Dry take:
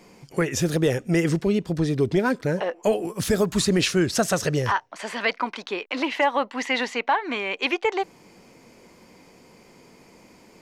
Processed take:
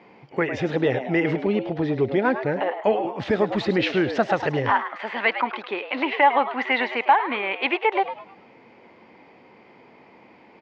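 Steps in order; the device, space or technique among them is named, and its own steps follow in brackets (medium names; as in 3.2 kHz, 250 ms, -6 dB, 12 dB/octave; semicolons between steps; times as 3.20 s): frequency-shifting delay pedal into a guitar cabinet (frequency-shifting echo 105 ms, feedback 33%, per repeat +130 Hz, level -10.5 dB; cabinet simulation 110–3400 Hz, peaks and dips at 170 Hz -6 dB, 830 Hz +7 dB, 2 kHz +4 dB)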